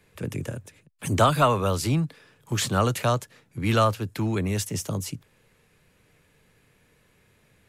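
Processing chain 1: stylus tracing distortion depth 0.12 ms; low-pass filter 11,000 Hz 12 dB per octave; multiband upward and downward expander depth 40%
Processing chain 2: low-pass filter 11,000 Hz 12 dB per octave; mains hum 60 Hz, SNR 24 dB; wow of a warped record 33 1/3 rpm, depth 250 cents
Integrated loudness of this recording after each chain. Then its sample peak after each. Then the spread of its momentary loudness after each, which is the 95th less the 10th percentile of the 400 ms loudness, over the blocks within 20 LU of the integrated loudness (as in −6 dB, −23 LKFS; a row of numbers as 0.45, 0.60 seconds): −23.5, −25.5 LKFS; −2.0, −6.5 dBFS; 18, 14 LU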